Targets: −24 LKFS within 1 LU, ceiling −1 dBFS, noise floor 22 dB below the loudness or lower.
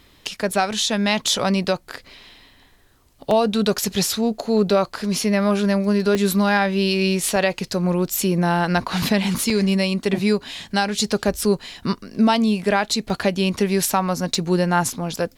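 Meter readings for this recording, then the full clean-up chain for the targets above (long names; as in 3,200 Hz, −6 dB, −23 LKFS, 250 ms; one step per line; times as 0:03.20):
number of dropouts 7; longest dropout 2.1 ms; integrated loudness −20.5 LKFS; sample peak −7.0 dBFS; target loudness −24.0 LKFS
→ repair the gap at 0:03.31/0:06.15/0:07.36/0:09.50/0:10.05/0:13.10/0:14.35, 2.1 ms
level −3.5 dB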